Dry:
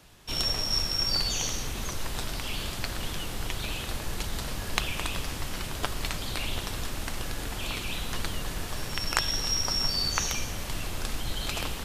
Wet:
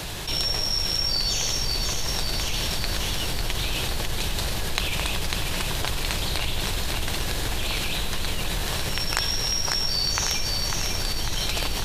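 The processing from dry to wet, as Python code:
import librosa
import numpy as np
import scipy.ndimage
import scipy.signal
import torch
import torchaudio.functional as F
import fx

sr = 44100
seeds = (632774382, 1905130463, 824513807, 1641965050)

y = fx.graphic_eq_31(x, sr, hz=(250, 1250, 4000), db=(-7, -4, 4))
y = fx.echo_feedback(y, sr, ms=548, feedback_pct=58, wet_db=-6.0)
y = fx.env_flatten(y, sr, amount_pct=70)
y = y * librosa.db_to_amplitude(-1.0)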